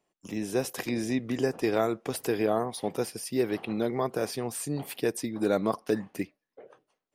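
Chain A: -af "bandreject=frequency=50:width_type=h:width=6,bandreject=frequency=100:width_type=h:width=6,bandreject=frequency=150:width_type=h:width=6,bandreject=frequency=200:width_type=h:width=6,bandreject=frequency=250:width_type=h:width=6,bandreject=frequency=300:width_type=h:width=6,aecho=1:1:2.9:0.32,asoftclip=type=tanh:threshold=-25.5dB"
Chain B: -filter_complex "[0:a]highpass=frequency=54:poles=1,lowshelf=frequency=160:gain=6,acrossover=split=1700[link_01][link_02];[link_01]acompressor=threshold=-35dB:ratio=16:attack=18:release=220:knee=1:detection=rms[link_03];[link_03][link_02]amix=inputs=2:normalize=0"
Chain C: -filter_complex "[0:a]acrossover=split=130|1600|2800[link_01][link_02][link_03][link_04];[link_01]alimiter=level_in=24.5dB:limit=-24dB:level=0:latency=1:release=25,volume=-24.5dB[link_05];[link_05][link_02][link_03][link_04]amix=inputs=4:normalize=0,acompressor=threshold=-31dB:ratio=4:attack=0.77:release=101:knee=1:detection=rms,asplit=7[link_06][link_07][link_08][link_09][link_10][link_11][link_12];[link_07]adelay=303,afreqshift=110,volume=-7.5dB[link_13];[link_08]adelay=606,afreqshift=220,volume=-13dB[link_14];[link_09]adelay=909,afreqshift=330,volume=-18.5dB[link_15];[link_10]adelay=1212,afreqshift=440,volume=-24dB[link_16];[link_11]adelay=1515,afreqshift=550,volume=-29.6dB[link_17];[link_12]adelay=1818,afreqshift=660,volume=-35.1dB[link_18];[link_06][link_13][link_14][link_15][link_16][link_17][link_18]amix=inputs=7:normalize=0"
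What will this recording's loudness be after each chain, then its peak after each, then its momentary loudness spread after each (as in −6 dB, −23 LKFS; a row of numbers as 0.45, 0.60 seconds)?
−33.5, −38.0, −36.5 LKFS; −25.5, −21.0, −23.0 dBFS; 4, 7, 7 LU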